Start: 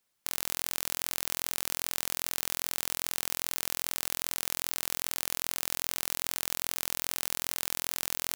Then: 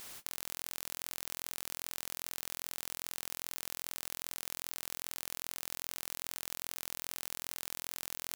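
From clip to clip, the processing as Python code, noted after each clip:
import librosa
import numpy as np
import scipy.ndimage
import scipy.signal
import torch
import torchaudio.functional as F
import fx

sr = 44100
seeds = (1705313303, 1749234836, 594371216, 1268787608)

y = fx.spectral_comp(x, sr, ratio=10.0)
y = y * librosa.db_to_amplitude(-5.5)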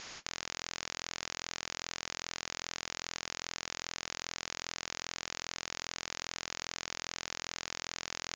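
y = scipy.signal.sosfilt(scipy.signal.cheby1(6, 3, 6900.0, 'lowpass', fs=sr, output='sos'), x)
y = y * librosa.db_to_amplitude(7.0)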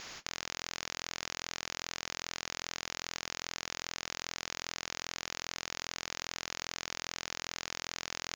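y = scipy.signal.medfilt(x, 3)
y = y * librosa.db_to_amplitude(1.0)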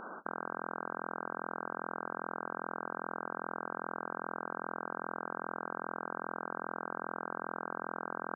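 y = fx.brickwall_bandpass(x, sr, low_hz=170.0, high_hz=1600.0)
y = y * librosa.db_to_amplitude(8.5)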